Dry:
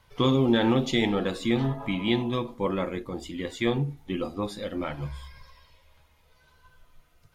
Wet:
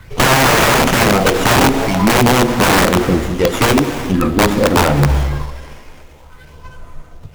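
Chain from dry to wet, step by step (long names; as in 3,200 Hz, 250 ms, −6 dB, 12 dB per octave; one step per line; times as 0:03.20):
all-pass phaser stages 4, 0.47 Hz, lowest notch 120–4,000 Hz
wrap-around overflow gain 24.5 dB
tape delay 225 ms, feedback 73%, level −23 dB, low-pass 2,100 Hz
reverb whose tail is shaped and stops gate 410 ms flat, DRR 12 dB
boost into a limiter +27 dB
windowed peak hold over 9 samples
level −3 dB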